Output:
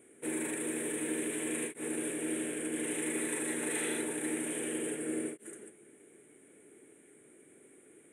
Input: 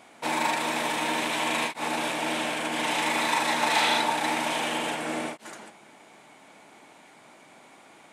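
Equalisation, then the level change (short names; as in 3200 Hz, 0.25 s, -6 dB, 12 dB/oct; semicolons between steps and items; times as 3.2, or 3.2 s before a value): EQ curve 120 Hz 0 dB, 200 Hz -4 dB, 420 Hz +9 dB, 650 Hz -15 dB, 940 Hz -23 dB, 1700 Hz -6 dB, 3400 Hz -14 dB, 4900 Hz -29 dB, 9100 Hz +11 dB, 13000 Hz -3 dB; -4.5 dB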